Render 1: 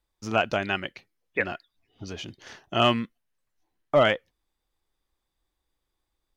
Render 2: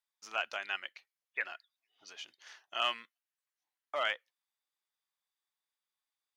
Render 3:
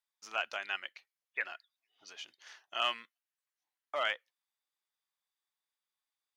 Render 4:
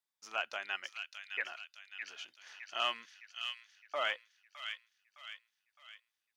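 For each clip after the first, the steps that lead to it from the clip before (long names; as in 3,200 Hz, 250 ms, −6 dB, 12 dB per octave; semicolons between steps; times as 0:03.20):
high-pass filter 1,100 Hz 12 dB per octave; level −7 dB
no processing that can be heard
delay with a high-pass on its return 612 ms, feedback 48%, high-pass 2,200 Hz, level −3 dB; level −1.5 dB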